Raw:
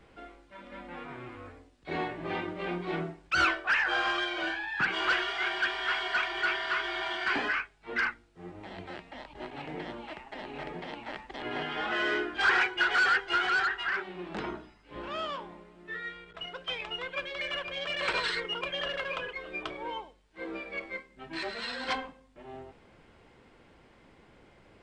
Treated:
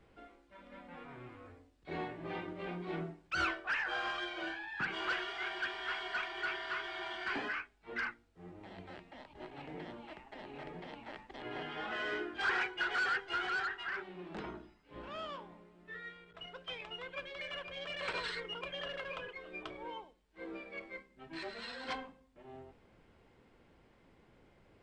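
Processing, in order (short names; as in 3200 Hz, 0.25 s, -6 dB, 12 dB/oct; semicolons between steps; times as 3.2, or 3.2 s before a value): low shelf 460 Hz +5 dB; notches 50/100/150/200/250/300/350 Hz; gain -9 dB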